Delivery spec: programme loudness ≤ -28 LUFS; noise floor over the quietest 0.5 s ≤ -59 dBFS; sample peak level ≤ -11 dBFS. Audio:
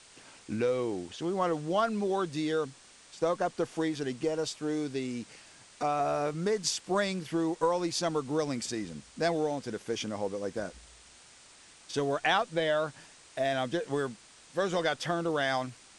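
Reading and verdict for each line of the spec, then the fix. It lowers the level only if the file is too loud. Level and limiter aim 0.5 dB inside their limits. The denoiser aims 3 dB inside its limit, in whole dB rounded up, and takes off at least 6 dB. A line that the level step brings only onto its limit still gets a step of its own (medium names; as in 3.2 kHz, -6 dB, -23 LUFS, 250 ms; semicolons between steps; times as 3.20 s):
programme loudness -31.5 LUFS: pass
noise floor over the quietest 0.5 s -56 dBFS: fail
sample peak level -13.5 dBFS: pass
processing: noise reduction 6 dB, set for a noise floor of -56 dBFS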